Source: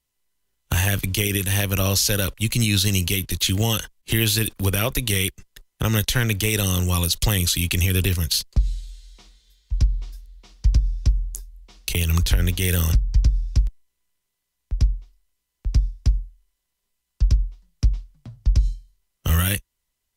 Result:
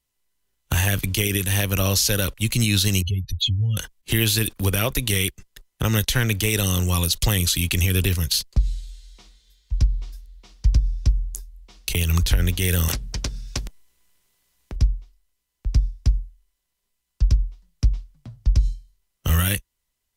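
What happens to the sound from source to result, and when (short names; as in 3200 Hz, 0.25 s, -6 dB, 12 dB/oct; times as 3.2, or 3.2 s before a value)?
3.02–3.77 spectral contrast raised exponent 3.2
12.88–14.76 spectral compressor 2:1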